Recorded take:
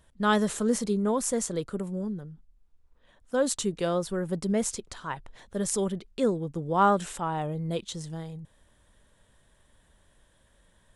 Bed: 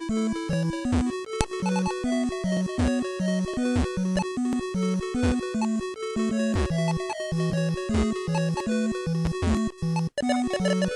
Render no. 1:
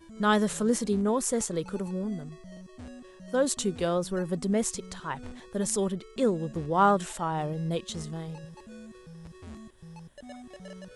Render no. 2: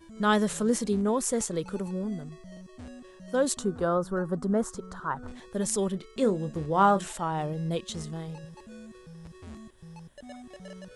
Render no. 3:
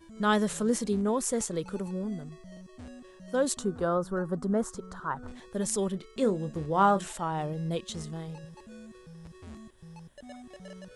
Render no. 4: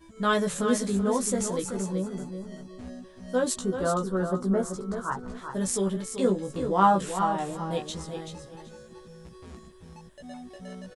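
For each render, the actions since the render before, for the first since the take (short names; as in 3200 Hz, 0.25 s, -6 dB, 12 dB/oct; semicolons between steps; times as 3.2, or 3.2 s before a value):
add bed -20.5 dB
3.59–5.28 resonant high shelf 1800 Hz -9 dB, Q 3; 5.91–7.08 doubler 26 ms -11 dB
gain -1.5 dB
doubler 16 ms -2.5 dB; feedback echo 0.382 s, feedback 20%, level -8 dB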